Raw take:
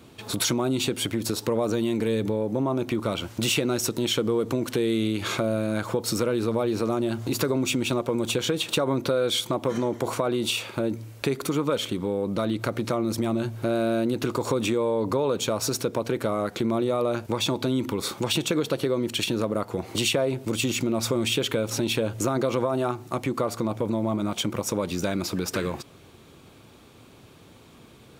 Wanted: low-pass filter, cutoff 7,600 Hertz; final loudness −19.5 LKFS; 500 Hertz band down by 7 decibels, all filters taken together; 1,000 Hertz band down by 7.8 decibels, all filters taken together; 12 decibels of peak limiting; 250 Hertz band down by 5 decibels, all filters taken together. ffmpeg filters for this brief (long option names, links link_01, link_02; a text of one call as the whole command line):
ffmpeg -i in.wav -af "lowpass=7600,equalizer=frequency=250:width_type=o:gain=-4,equalizer=frequency=500:width_type=o:gain=-5.5,equalizer=frequency=1000:width_type=o:gain=-8.5,volume=15.5dB,alimiter=limit=-9.5dB:level=0:latency=1" out.wav